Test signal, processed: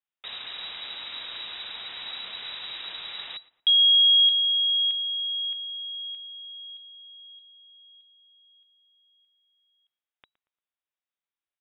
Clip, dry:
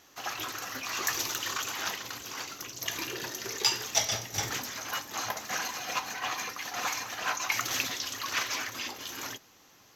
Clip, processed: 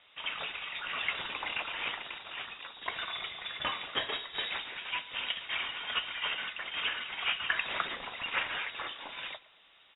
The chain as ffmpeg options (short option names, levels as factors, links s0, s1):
-filter_complex "[0:a]lowpass=f=3300:t=q:w=0.5098,lowpass=f=3300:t=q:w=0.6013,lowpass=f=3300:t=q:w=0.9,lowpass=f=3300:t=q:w=2.563,afreqshift=-3900,asplit=2[s0][s1];[s1]adelay=116,lowpass=f=2300:p=1,volume=0.112,asplit=2[s2][s3];[s3]adelay=116,lowpass=f=2300:p=1,volume=0.38,asplit=2[s4][s5];[s5]adelay=116,lowpass=f=2300:p=1,volume=0.38[s6];[s0][s2][s4][s6]amix=inputs=4:normalize=0"